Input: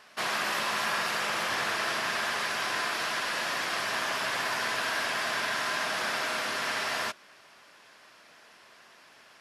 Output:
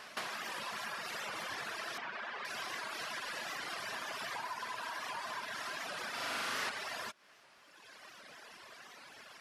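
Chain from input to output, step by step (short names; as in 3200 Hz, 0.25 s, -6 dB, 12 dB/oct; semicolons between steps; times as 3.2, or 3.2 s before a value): reverb removal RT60 1.7 s; 4.31–5.44 bell 980 Hz +11 dB 0.33 oct; compressor 16:1, threshold -43 dBFS, peak gain reduction 18.5 dB; 1.98–2.45 BPF 200–2800 Hz; 6.1–6.7 flutter echo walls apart 7 m, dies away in 1.5 s; record warp 78 rpm, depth 160 cents; gain +5 dB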